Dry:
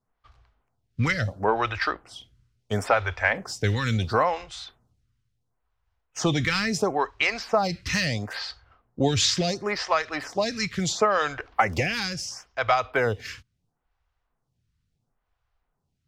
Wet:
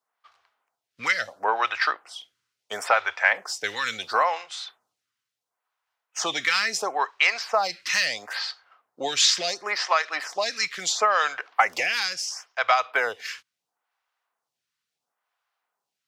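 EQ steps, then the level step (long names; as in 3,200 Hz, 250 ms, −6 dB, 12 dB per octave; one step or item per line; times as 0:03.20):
high-pass filter 790 Hz 12 dB per octave
+3.5 dB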